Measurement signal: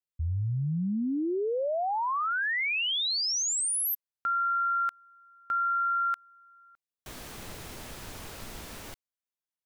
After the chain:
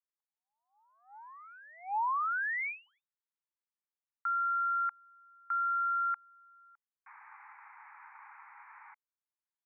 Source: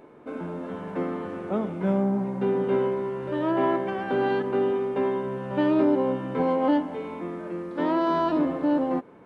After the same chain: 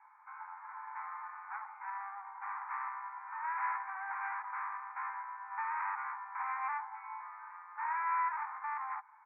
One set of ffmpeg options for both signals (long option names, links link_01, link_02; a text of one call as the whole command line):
ffmpeg -i in.wav -af "tiltshelf=frequency=1200:gain=6.5,aresample=8000,asoftclip=type=tanh:threshold=-20.5dB,aresample=44100,asuperpass=centerf=1400:order=20:qfactor=0.91,volume=-2dB" out.wav